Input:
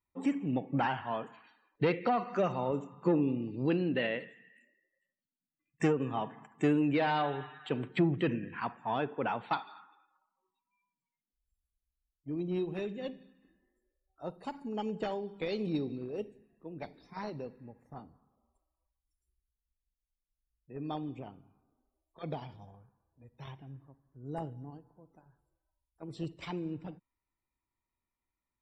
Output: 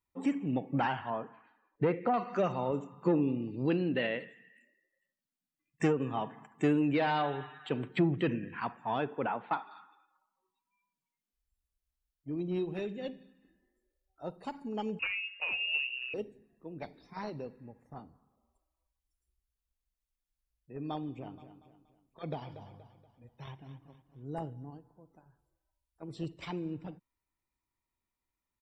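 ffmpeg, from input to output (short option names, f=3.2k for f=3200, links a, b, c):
-filter_complex "[0:a]asettb=1/sr,asplit=3[a][b][c];[a]atrim=end=1.104[d];[b]atrim=start=1.1:end=2.14,asetpts=PTS-STARTPTS,afade=t=in:d=0.004:c=qsin,afade=t=out:st=1.036:d=0.004:c=qsin,lowpass=1.6k[e];[c]atrim=start=2.136[f];[d][e]acrossfade=d=0.004:c1=hsin:c2=qsin[g];[g][f]acrossfade=d=0.004:c1=qsin:c2=hsin,asplit=3[h][i][j];[h]afade=t=out:st=9.26:d=0.02[k];[i]highpass=170,lowpass=2.1k,afade=t=in:st=9.26:d=0.02,afade=t=out:st=9.7:d=0.02[l];[j]afade=t=in:st=9.7:d=0.02[m];[k][l][m]amix=inputs=3:normalize=0,asettb=1/sr,asplit=3[n][o][p];[n]atrim=end=12.734[q];[o]atrim=start=12.73:end=14.32,asetpts=PTS-STARTPTS,afade=t=in:d=0.004:c=qsin,afade=t=out:st=1.586:d=0.004:c=qsin,bandreject=f=1.1k:w=8.5[r];[p]atrim=start=14.316[s];[q][r]acrossfade=d=0.004:c1=hsin:c2=qsin[t];[t][s]acrossfade=d=0.004:c1=qsin:c2=hsin,asettb=1/sr,asplit=3[u][v][w];[u]atrim=end=14.994[x];[v]atrim=start=14.99:end=16.14,asetpts=PTS-STARTPTS,afade=t=in:d=0.004:c=qsin,afade=t=out:st=1.146:d=0.004:c=qsin,lowpass=f=2.6k:t=q:w=0.5098,lowpass=f=2.6k:t=q:w=0.6013,lowpass=f=2.6k:t=q:w=0.9,lowpass=f=2.6k:t=q:w=2.563,afreqshift=-3000[y];[w]atrim=start=16.136[z];[x][y]acrossfade=d=0.004:c1=hsin:c2=qsin[aa];[aa][z]acrossfade=d=0.004:c1=qsin:c2=hsin,asplit=3[ab][ac][ad];[ab]afade=t=out:st=21.21:d=0.02[ae];[ac]aecho=1:1:237|474|711|948:0.251|0.1|0.0402|0.0161,afade=t=in:st=21.21:d=0.02,afade=t=out:st=24.36:d=0.02[af];[ad]afade=t=in:st=24.36:d=0.02[ag];[ae][af][ag]amix=inputs=3:normalize=0"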